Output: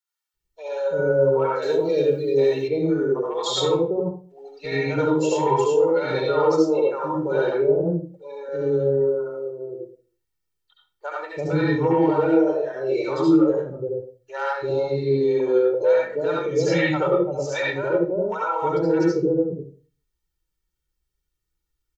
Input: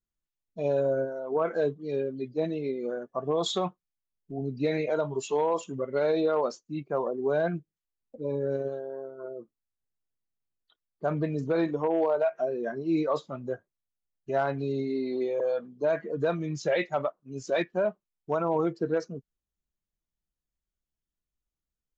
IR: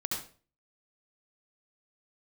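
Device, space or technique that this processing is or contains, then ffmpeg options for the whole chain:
microphone above a desk: -filter_complex "[0:a]aecho=1:1:2.2:0.83[s0];[1:a]atrim=start_sample=2205[s1];[s0][s1]afir=irnorm=-1:irlink=0,asettb=1/sr,asplit=3[s2][s3][s4];[s2]atrim=end=1.624[s5];[s3]atrim=start=1.62:end=2.68,asetpts=PTS-STARTPTS,afade=t=in:d=0.004:c=qsin,afade=t=out:st=1.056:d=0.004:c=qsin,aemphasis=mode=production:type=75kf[s6];[s4]atrim=start=2.676[s7];[s5][s6]acrossfade=d=0.004:c1=hsin:c2=qsin[s8];[s8][s7]acrossfade=d=0.004:c1=qsin:c2=hsin,acrossover=split=640[s9][s10];[s9]adelay=340[s11];[s11][s10]amix=inputs=2:normalize=0,volume=1.41"

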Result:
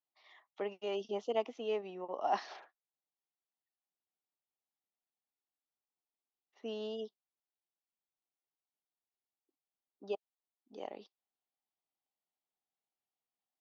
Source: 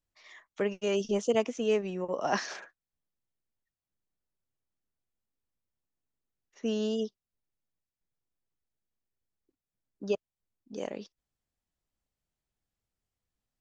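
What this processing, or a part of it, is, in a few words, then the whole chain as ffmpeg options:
phone earpiece: -af "highpass=370,equalizer=f=520:t=q:w=4:g=-5,equalizer=f=780:t=q:w=4:g=7,equalizer=f=1600:t=q:w=4:g=-10,equalizer=f=2400:t=q:w=4:g=-5,lowpass=f=4200:w=0.5412,lowpass=f=4200:w=1.3066,volume=0.562"

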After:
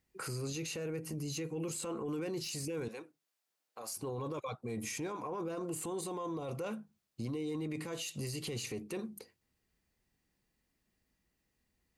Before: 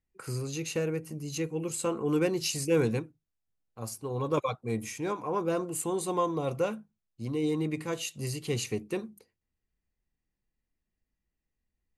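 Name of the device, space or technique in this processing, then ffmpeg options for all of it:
broadcast voice chain: -filter_complex "[0:a]highpass=f=110:p=1,deesser=0.7,acompressor=threshold=0.00708:ratio=3,equalizer=f=4600:t=o:w=0.35:g=2.5,alimiter=level_in=6.68:limit=0.0631:level=0:latency=1:release=10,volume=0.15,asettb=1/sr,asplit=3[s0][s1][s2];[s0]atrim=end=2.884[s3];[s1]atrim=start=2.88:end=3.97,asetpts=PTS-STARTPTS,afade=t=in:d=0.004:c=qsin,afade=t=out:st=1.086:d=0.004:c=qsin,highpass=480[s4];[s2]atrim=start=3.966[s5];[s3][s4]acrossfade=d=0.004:c1=hsin:c2=qsin[s6];[s6][s5]acrossfade=d=0.004:c1=qsin:c2=hsin,volume=2.82"

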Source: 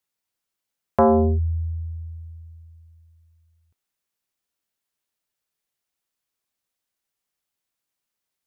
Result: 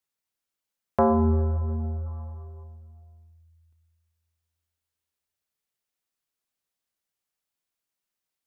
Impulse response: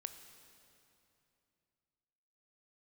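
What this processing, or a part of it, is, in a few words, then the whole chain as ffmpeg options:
stairwell: -filter_complex "[1:a]atrim=start_sample=2205[s0];[0:a][s0]afir=irnorm=-1:irlink=0,asettb=1/sr,asplit=3[s1][s2][s3];[s1]atrim=end=2.064[s4];[s2]atrim=start=2.06:end=2.64,asetpts=PTS-STARTPTS,afade=t=in:d=0.004:c=qsin,afade=t=out:st=0.576:d=0.004:c=qsin,equalizer=f=1100:w=3:g=11.5[s5];[s3]atrim=start=2.636[s6];[s4][s5]acrossfade=d=0.004:c1=hsin:c2=qsin[s7];[s7][s6]acrossfade=d=0.004:c1=qsin:c2=hsin"

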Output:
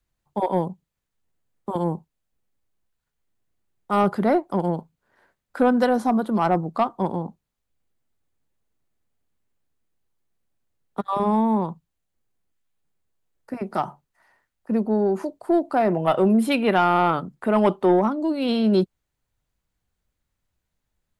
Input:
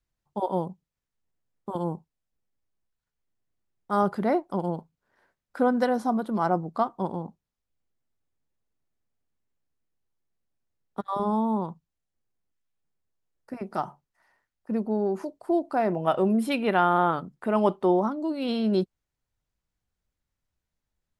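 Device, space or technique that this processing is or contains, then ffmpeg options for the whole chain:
one-band saturation: -filter_complex "[0:a]equalizer=f=5400:w=4.9:g=-4,acrossover=split=250|2500[s0][s1][s2];[s1]asoftclip=type=tanh:threshold=0.15[s3];[s0][s3][s2]amix=inputs=3:normalize=0,volume=1.88"

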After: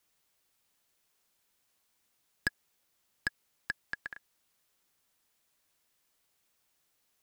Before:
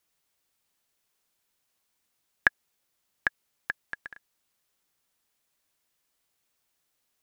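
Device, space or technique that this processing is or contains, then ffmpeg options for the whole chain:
one-band saturation: -filter_complex "[0:a]acrossover=split=430|4200[s0][s1][s2];[s1]asoftclip=type=tanh:threshold=0.0562[s3];[s0][s3][s2]amix=inputs=3:normalize=0,volume=1.19"

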